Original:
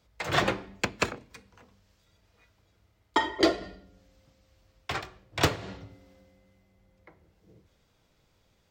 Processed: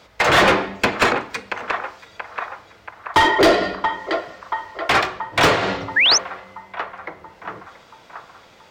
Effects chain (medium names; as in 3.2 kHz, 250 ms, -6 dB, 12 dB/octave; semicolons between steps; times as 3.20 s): band-passed feedback delay 680 ms, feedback 61%, band-pass 1.1 kHz, level -16 dB; overdrive pedal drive 27 dB, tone 2.3 kHz, clips at -9.5 dBFS; painted sound rise, 5.96–6.18 s, 1.6–6.5 kHz -19 dBFS; trim +5 dB